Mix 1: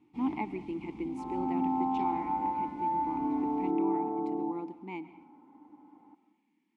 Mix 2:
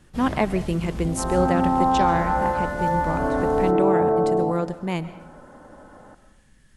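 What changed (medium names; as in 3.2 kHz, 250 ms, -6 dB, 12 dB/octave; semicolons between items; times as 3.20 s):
speech: remove brick-wall FIR high-pass 170 Hz; first sound -4.0 dB; master: remove vowel filter u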